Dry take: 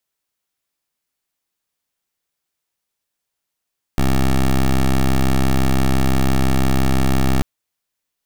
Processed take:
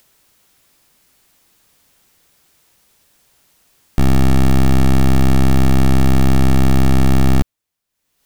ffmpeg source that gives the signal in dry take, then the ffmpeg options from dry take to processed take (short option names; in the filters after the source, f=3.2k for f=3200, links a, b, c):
-f lavfi -i "aevalsrc='0.188*(2*lt(mod(65.9*t,1),0.13)-1)':d=3.44:s=44100"
-af "lowshelf=f=310:g=6,acompressor=mode=upward:threshold=-38dB:ratio=2.5"